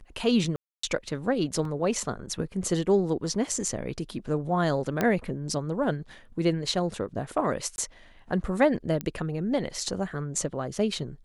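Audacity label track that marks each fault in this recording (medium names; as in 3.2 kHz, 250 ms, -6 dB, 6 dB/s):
0.560000	0.830000	dropout 274 ms
1.650000	1.650000	dropout 2.6 ms
5.010000	5.010000	pop -11 dBFS
7.760000	7.780000	dropout 21 ms
9.010000	9.010000	pop -16 dBFS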